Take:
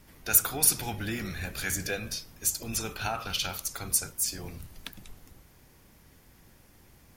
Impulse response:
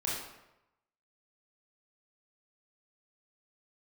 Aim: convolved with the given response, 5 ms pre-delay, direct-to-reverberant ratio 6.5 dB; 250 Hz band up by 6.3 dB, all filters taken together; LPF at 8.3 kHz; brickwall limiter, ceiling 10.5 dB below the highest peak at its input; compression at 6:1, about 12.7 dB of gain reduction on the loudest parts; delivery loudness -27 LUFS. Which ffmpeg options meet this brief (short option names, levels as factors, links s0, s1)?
-filter_complex "[0:a]lowpass=8300,equalizer=f=250:t=o:g=8,acompressor=threshold=0.0141:ratio=6,alimiter=level_in=2.37:limit=0.0631:level=0:latency=1,volume=0.422,asplit=2[s0][s1];[1:a]atrim=start_sample=2205,adelay=5[s2];[s1][s2]afir=irnorm=-1:irlink=0,volume=0.266[s3];[s0][s3]amix=inputs=2:normalize=0,volume=5.31"